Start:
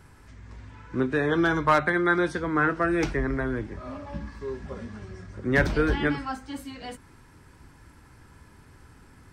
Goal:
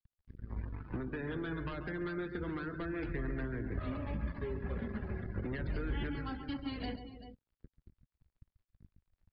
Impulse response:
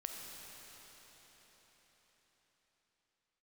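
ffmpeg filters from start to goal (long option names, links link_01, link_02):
-filter_complex "[0:a]bandreject=frequency=50:width_type=h:width=6,bandreject=frequency=100:width_type=h:width=6,bandreject=frequency=150:width_type=h:width=6,bandreject=frequency=200:width_type=h:width=6,aeval=exprs='sgn(val(0))*max(abs(val(0))-0.00562,0)':channel_layout=same,acompressor=threshold=-36dB:ratio=20,aresample=11025,asoftclip=type=hard:threshold=-37dB,aresample=44100,acrossover=split=500|1700[link_01][link_02][link_03];[link_01]acompressor=threshold=-49dB:ratio=4[link_04];[link_02]acompressor=threshold=-58dB:ratio=4[link_05];[link_03]acompressor=threshold=-52dB:ratio=4[link_06];[link_04][link_05][link_06]amix=inputs=3:normalize=0,lowshelf=frequency=190:gain=11.5,asplit=2[link_07][link_08];[link_08]aecho=0:1:138|278|387:0.355|0.158|0.299[link_09];[link_07][link_09]amix=inputs=2:normalize=0,afftdn=noise_reduction=22:noise_floor=-56,volume=6dB"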